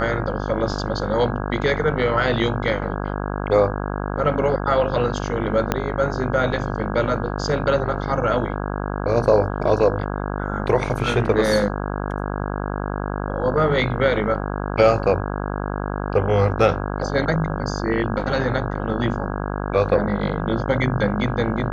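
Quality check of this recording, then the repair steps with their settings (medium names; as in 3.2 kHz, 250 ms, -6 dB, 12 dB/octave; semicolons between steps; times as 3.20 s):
buzz 50 Hz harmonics 33 -26 dBFS
5.72 s: pop -5 dBFS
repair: de-click; de-hum 50 Hz, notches 33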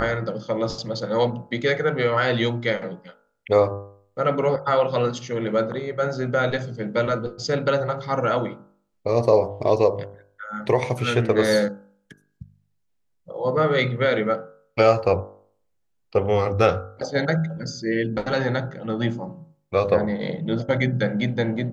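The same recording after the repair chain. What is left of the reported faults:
5.72 s: pop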